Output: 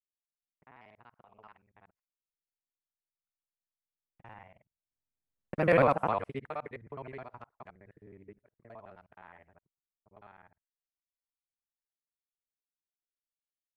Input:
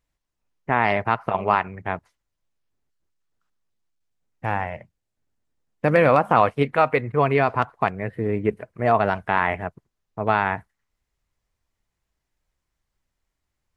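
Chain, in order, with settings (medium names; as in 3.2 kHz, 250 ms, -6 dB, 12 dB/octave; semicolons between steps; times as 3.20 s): time reversed locally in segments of 50 ms; Doppler pass-by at 5.78 s, 16 m/s, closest 2.5 m; trim -6 dB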